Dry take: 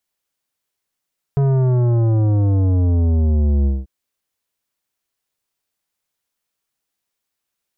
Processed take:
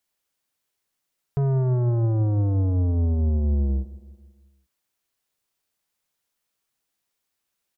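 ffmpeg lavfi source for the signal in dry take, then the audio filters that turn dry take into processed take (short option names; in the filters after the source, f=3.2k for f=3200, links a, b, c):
-f lavfi -i "aevalsrc='0.2*clip((2.49-t)/0.2,0,1)*tanh(3.98*sin(2*PI*140*2.49/log(65/140)*(exp(log(65/140)*t/2.49)-1)))/tanh(3.98)':d=2.49:s=44100"
-af "alimiter=limit=-20dB:level=0:latency=1:release=154,aecho=1:1:163|326|489|652|815:0.112|0.0617|0.0339|0.0187|0.0103"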